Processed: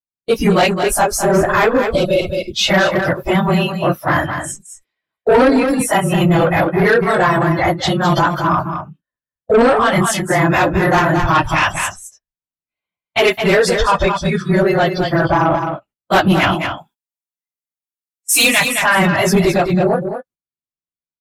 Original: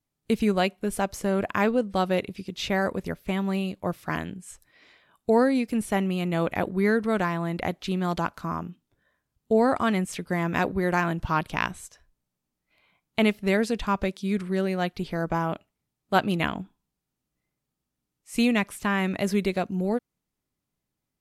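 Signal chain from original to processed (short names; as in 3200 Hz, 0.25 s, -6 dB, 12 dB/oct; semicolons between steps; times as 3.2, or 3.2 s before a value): phase scrambler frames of 50 ms; 1.33–2.4 added noise brown -51 dBFS; spectral noise reduction 17 dB; gate -52 dBFS, range -23 dB; 16.56–18.61 tilt +4 dB/oct; soft clip -21.5 dBFS, distortion -12 dB; 1.91–2.53 spectral gain 710–2100 Hz -21 dB; echo 0.214 s -9 dB; maximiser +23.5 dB; gain -5.5 dB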